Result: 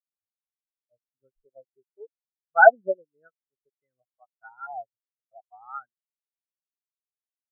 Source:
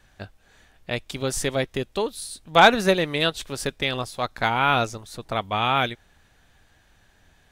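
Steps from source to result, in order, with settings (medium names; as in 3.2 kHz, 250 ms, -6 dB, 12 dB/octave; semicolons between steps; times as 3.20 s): LFO low-pass saw up 1.5 Hz 720–1800 Hz; spectral contrast expander 4:1; trim -3.5 dB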